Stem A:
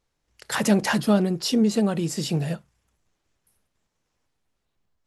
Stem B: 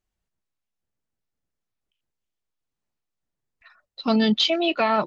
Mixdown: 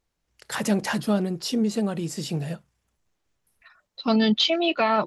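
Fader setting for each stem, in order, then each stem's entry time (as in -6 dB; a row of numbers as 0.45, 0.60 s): -3.5, -0.5 dB; 0.00, 0.00 s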